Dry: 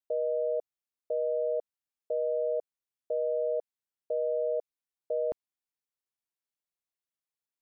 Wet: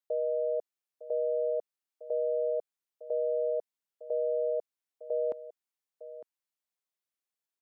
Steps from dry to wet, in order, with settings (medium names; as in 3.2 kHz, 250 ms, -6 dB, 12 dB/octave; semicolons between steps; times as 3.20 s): Bessel high-pass 260 Hz; delay 906 ms -14.5 dB